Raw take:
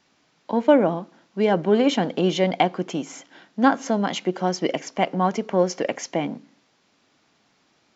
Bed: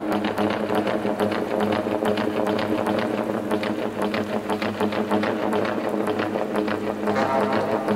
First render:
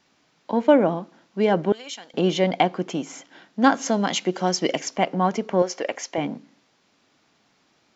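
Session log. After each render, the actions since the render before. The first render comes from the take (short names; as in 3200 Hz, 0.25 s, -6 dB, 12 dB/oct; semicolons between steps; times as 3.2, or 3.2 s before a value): 1.72–2.14 differentiator; 3.64–4.96 high shelf 3500 Hz +9 dB; 5.62–6.18 bell 160 Hz -14.5 dB 1.5 oct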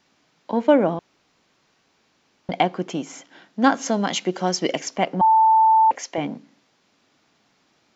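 0.99–2.49 room tone; 5.21–5.91 bleep 885 Hz -11.5 dBFS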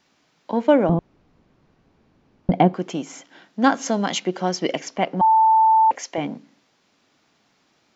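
0.89–2.74 tilt -4.5 dB/oct; 4.2–5.17 air absorption 69 m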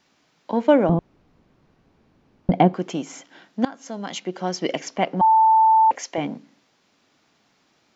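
3.65–4.86 fade in, from -22.5 dB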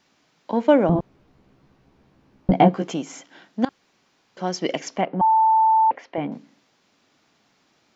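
0.94–2.94 doubler 15 ms -2.5 dB; 3.69–4.37 room tone; 5.01–6.32 air absorption 390 m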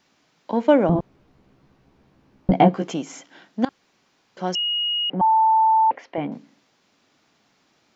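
4.55–5.1 bleep 2880 Hz -20.5 dBFS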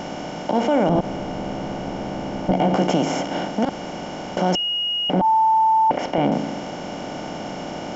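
per-bin compression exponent 0.4; limiter -9.5 dBFS, peak gain reduction 10 dB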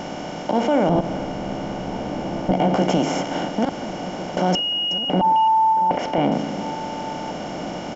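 reverse delay 0.249 s, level -13.5 dB; outdoor echo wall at 240 m, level -14 dB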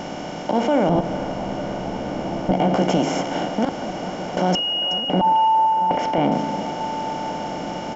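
band-limited delay 0.449 s, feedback 73%, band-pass 960 Hz, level -11.5 dB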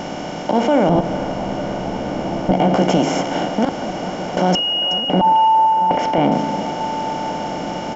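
gain +3.5 dB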